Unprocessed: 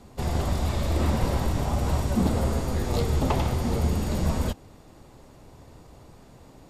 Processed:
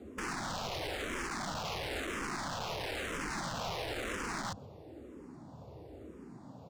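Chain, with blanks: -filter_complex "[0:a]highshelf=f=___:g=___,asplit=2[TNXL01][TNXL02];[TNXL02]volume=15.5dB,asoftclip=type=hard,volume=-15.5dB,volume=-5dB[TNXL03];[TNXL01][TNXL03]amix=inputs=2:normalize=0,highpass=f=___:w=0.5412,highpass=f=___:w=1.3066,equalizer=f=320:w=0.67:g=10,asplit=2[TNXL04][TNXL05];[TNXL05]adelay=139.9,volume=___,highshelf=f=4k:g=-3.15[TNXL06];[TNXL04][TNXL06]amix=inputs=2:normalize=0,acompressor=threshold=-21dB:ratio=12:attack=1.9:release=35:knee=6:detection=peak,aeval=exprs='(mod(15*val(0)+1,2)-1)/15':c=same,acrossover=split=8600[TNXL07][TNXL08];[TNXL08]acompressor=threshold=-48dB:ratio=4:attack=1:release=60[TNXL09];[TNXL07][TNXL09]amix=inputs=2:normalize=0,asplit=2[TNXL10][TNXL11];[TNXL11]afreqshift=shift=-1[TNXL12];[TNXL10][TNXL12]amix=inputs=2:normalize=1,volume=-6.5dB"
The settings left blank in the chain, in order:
4.6k, -9.5, 59, 59, -25dB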